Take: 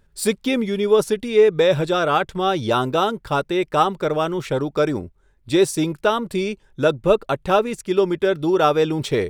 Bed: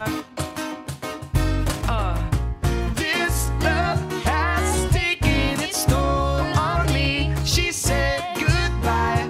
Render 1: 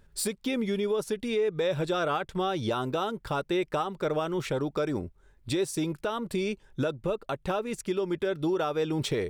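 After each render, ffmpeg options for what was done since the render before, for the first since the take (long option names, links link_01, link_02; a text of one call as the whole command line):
ffmpeg -i in.wav -af "acompressor=threshold=-21dB:ratio=2,alimiter=limit=-19.5dB:level=0:latency=1:release=470" out.wav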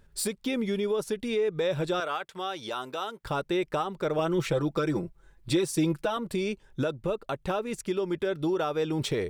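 ffmpeg -i in.wav -filter_complex "[0:a]asettb=1/sr,asplit=3[link_01][link_02][link_03];[link_01]atrim=end=2.004[link_04];[link_02]atrim=start=2:end=3.24,asetpts=PTS-STARTPTS,afade=type=in:duration=0.004:curve=qsin,afade=type=out:start_time=1.236:duration=0.004:curve=qsin,highpass=frequency=910:poles=1[link_05];[link_03]atrim=start=3.236[link_06];[link_04][link_05]acrossfade=duration=0.004:curve1=hsin:curve2=qsin[link_07];[link_07][link_06]acrossfade=duration=0.004:curve1=qsin:curve2=hsin,asettb=1/sr,asplit=3[link_08][link_09][link_10];[link_08]atrim=end=4.184[link_11];[link_09]atrim=start=4.18:end=6.17,asetpts=PTS-STARTPTS,afade=type=in:duration=0.004:curve=qsin,afade=type=out:start_time=1.986:duration=0.004:curve=qsin,aecho=1:1:6:0.8,atrim=end_sample=87759[link_12];[link_10]atrim=start=6.166[link_13];[link_11][link_12]acrossfade=duration=0.004:curve1=hsin:curve2=qsin[link_14];[link_14][link_13]acrossfade=duration=0.004:curve1=qsin:curve2=hsin" out.wav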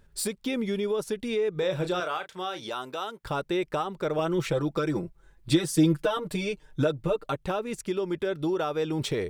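ffmpeg -i in.wav -filter_complex "[0:a]asettb=1/sr,asplit=3[link_01][link_02][link_03];[link_01]atrim=end=1.514[link_04];[link_02]atrim=start=1.51:end=2.67,asetpts=PTS-STARTPTS,afade=type=in:duration=0.004:curve=qsin,afade=type=out:start_time=1.156:duration=0.004:curve=qsin,asplit=2[link_05][link_06];[link_06]adelay=33,volume=-9.5dB[link_07];[link_05][link_07]amix=inputs=2:normalize=0,atrim=end_sample=51156[link_08];[link_03]atrim=start=2.666[link_09];[link_04][link_08]acrossfade=duration=0.004:curve1=hsin:curve2=qsin[link_10];[link_10][link_09]acrossfade=duration=0.004:curve1=qsin:curve2=hsin,asettb=1/sr,asplit=3[link_11][link_12][link_13];[link_11]atrim=end=5.514[link_14];[link_12]atrim=start=5.51:end=7.36,asetpts=PTS-STARTPTS,afade=type=in:duration=0.004:curve=qsin,afade=type=out:start_time=1.846:duration=0.004:curve=qsin,aecho=1:1:6.6:0.85,atrim=end_sample=81585[link_15];[link_13]atrim=start=7.356[link_16];[link_14][link_15]acrossfade=duration=0.004:curve1=hsin:curve2=qsin[link_17];[link_17][link_16]acrossfade=duration=0.004:curve1=qsin:curve2=hsin" out.wav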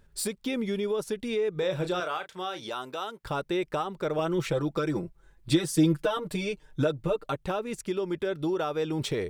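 ffmpeg -i in.wav -af "volume=-1dB" out.wav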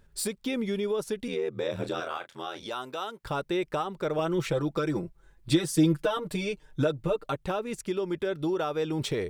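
ffmpeg -i in.wav -filter_complex "[0:a]asettb=1/sr,asplit=3[link_01][link_02][link_03];[link_01]atrim=end=1.274[link_04];[link_02]atrim=start=1.27:end=2.66,asetpts=PTS-STARTPTS,afade=type=in:duration=0.004:curve=qsin,afade=type=out:start_time=1.386:duration=0.004:curve=qsin,aeval=exprs='val(0)*sin(2*PI*41*n/s)':channel_layout=same[link_05];[link_03]atrim=start=2.656[link_06];[link_04][link_05]acrossfade=duration=0.004:curve1=hsin:curve2=qsin[link_07];[link_07][link_06]acrossfade=duration=0.004:curve1=qsin:curve2=hsin" out.wav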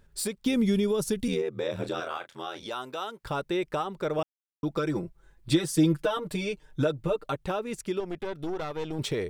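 ffmpeg -i in.wav -filter_complex "[0:a]asettb=1/sr,asplit=3[link_01][link_02][link_03];[link_01]atrim=end=0.464[link_04];[link_02]atrim=start=0.46:end=1.42,asetpts=PTS-STARTPTS,afade=type=in:duration=0.004:curve=qsin,afade=type=out:start_time=0.956:duration=0.004:curve=qsin,bass=frequency=250:gain=12,treble=frequency=4000:gain=9[link_05];[link_03]atrim=start=1.416[link_06];[link_04][link_05]acrossfade=duration=0.004:curve1=hsin:curve2=qsin[link_07];[link_07][link_06]acrossfade=duration=0.004:curve1=qsin:curve2=hsin,asettb=1/sr,asplit=3[link_08][link_09][link_10];[link_08]atrim=end=8.004[link_11];[link_09]atrim=start=8:end=8.99,asetpts=PTS-STARTPTS,afade=type=in:duration=0.004:curve=qsin,afade=type=out:start_time=0.986:duration=0.004:curve=qsin,aeval=exprs='(tanh(22.4*val(0)+0.75)-tanh(0.75))/22.4':channel_layout=same[link_12];[link_10]atrim=start=8.986[link_13];[link_11][link_12]acrossfade=duration=0.004:curve1=hsin:curve2=qsin[link_14];[link_14][link_13]acrossfade=duration=0.004:curve1=qsin:curve2=hsin,asplit=3[link_15][link_16][link_17];[link_15]atrim=end=4.23,asetpts=PTS-STARTPTS,afade=type=out:start_time=4.226:duration=0.004:curve=hsin[link_18];[link_16]atrim=start=4.23:end=4.63,asetpts=PTS-STARTPTS,volume=0[link_19];[link_17]atrim=start=4.63,asetpts=PTS-STARTPTS,afade=type=in:duration=0.004:curve=hsin[link_20];[link_18][link_19][link_20]concat=n=3:v=0:a=1" out.wav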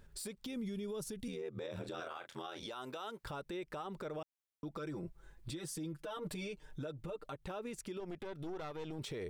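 ffmpeg -i in.wav -af "acompressor=threshold=-33dB:ratio=12,alimiter=level_in=10.5dB:limit=-24dB:level=0:latency=1:release=93,volume=-10.5dB" out.wav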